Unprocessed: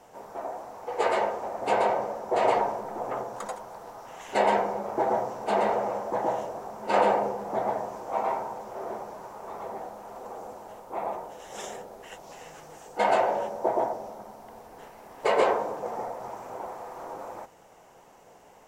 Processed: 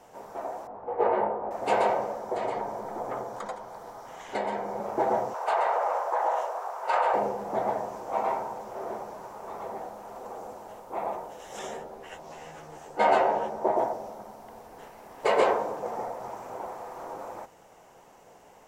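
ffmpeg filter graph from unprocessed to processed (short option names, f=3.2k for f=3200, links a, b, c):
-filter_complex "[0:a]asettb=1/sr,asplit=3[a][b][c];[a]atrim=end=0.674[d];[b]atrim=start=0.67:end=1.51,asetpts=PTS-STARTPTS,afade=t=in:d=0.004:c=qsin,afade=t=out:st=0.836:d=0.004:c=qsin,lowpass=1.1k,asplit=2[e][f];[f]adelay=19,volume=-3dB[g];[e][g]amix=inputs=2:normalize=0,atrim=end_sample=37044[h];[c]atrim=start=1.506[i];[d][h]acrossfade=d=0.004:c1=hsin:c2=qsin[j];[j][i]acrossfade=d=0.004:c1=qsin:c2=hsin,asettb=1/sr,asplit=3[k][l][m];[k]atrim=end=2.164[n];[l]atrim=start=2.16:end=4.8,asetpts=PTS-STARTPTS,afade=t=in:d=0.004:c=qsin,afade=t=out:st=2.636:d=0.004:c=qsin,bandreject=f=2.7k:w=10,acrossover=split=330|5400[o][p][q];[o]acompressor=threshold=-39dB:ratio=4[r];[p]acompressor=threshold=-30dB:ratio=4[s];[q]acompressor=threshold=-60dB:ratio=4[t];[r][s][t]amix=inputs=3:normalize=0[u];[m]atrim=start=4.796[v];[n][u]acrossfade=d=0.004:c1=hsin:c2=qsin[w];[w][v]acrossfade=d=0.004:c1=qsin:c2=hsin,asettb=1/sr,asplit=3[x][y][z];[x]atrim=end=5.344[aa];[y]atrim=start=5.34:end=7.14,asetpts=PTS-STARTPTS,afade=t=in:d=0.004:c=qsin,afade=t=out:st=1.796:d=0.004:c=qsin,highpass=f=500:w=0.5412,highpass=f=500:w=1.3066,equalizer=f=1.2k:w=1:g=8.5,acompressor=threshold=-22dB:ratio=3:attack=3.2:release=140:knee=1:detection=peak[ab];[z]atrim=start=7.136[ac];[aa][ab]acrossfade=d=0.004:c1=hsin:c2=qsin[ad];[ad][ac]acrossfade=d=0.004:c1=qsin:c2=hsin,asettb=1/sr,asplit=3[ae][af][ag];[ae]atrim=end=11.594[ah];[af]atrim=start=11.59:end=13.77,asetpts=PTS-STARTPTS,afade=t=in:d=0.004:c=qsin,afade=t=out:st=2.176:d=0.004:c=qsin,highshelf=f=3.9k:g=-7.5,asplit=2[ai][aj];[aj]adelay=13,volume=-2dB[ak];[ai][ak]amix=inputs=2:normalize=0,atrim=end_sample=96138[al];[ag]atrim=start=13.766[am];[ah][al]acrossfade=d=0.004:c1=hsin:c2=qsin[an];[an][am]acrossfade=d=0.004:c1=qsin:c2=hsin"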